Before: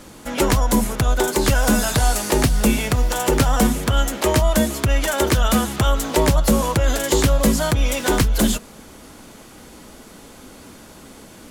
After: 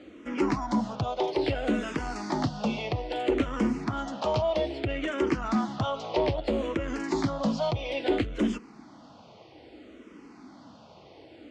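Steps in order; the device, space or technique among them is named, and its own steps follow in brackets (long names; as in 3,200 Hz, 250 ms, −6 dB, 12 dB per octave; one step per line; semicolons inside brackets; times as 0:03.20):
0:04.62–0:06.52: low-pass filter 9,600 Hz 12 dB per octave
barber-pole phaser into a guitar amplifier (frequency shifter mixed with the dry sound −0.61 Hz; soft clipping −12 dBFS, distortion −19 dB; loudspeaker in its box 98–4,500 Hz, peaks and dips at 170 Hz −3 dB, 310 Hz +7 dB, 710 Hz +4 dB, 1,600 Hz −6 dB, 3,700 Hz −4 dB)
level −5 dB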